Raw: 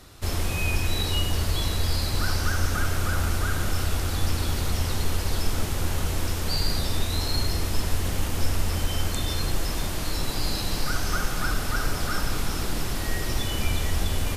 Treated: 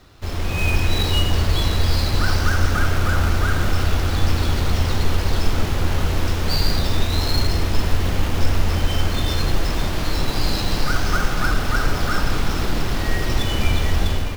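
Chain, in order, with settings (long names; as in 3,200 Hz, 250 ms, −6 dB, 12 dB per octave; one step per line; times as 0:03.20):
running median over 5 samples
automatic gain control gain up to 7 dB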